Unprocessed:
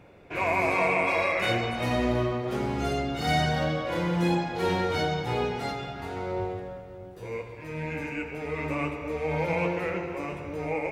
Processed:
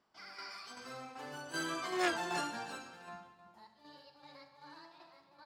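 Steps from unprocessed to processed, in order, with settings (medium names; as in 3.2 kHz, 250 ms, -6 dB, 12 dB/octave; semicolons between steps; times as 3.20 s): Doppler pass-by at 4.16 s, 19 m/s, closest 1.6 m; low-pass 6.3 kHz 12 dB/octave; bass shelf 88 Hz -6 dB; in parallel at -1.5 dB: compressor with a negative ratio -45 dBFS, ratio -0.5; on the sum: tremolo saw down 1.3 Hz, depth 50%; on a send: delay 622 ms -14 dB; on the sum: speed mistake 7.5 ips tape played at 15 ips; transformer saturation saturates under 2 kHz; trim +2.5 dB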